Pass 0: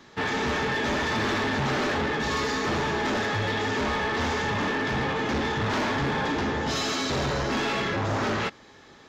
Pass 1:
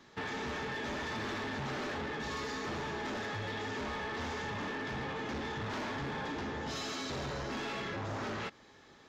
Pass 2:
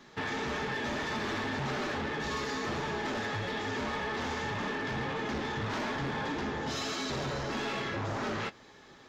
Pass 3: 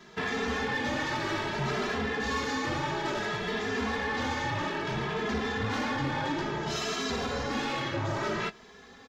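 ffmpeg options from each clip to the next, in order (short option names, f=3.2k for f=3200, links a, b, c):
-af "acompressor=threshold=-29dB:ratio=6,volume=-7.5dB"
-af "flanger=delay=4.7:depth=3.9:regen=-55:speed=1.7:shape=sinusoidal,volume=8dB"
-filter_complex "[0:a]asplit=2[a][b];[b]adelay=2.6,afreqshift=0.59[c];[a][c]amix=inputs=2:normalize=1,volume=6dB"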